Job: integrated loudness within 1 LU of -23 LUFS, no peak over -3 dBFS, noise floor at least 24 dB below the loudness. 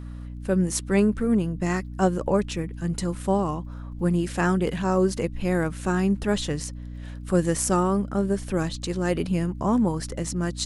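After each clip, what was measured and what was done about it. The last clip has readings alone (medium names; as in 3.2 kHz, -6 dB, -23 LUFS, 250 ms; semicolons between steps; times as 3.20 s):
tick rate 22 per s; hum 60 Hz; highest harmonic 300 Hz; hum level -34 dBFS; loudness -25.0 LUFS; peak level -8.0 dBFS; loudness target -23.0 LUFS
-> de-click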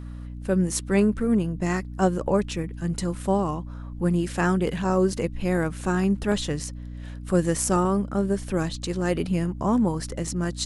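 tick rate 0 per s; hum 60 Hz; highest harmonic 300 Hz; hum level -34 dBFS
-> de-hum 60 Hz, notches 5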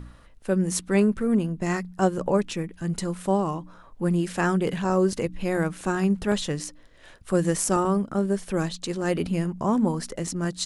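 hum not found; loudness -25.5 LUFS; peak level -8.5 dBFS; loudness target -23.0 LUFS
-> trim +2.5 dB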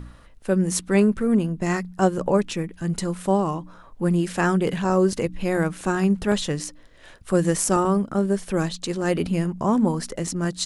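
loudness -23.0 LUFS; peak level -6.0 dBFS; noise floor -48 dBFS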